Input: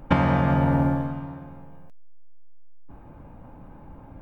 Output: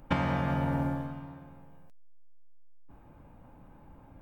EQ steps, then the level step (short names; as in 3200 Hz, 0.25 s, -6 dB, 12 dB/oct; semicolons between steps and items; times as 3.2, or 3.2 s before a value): high shelf 2600 Hz +8.5 dB; -9.0 dB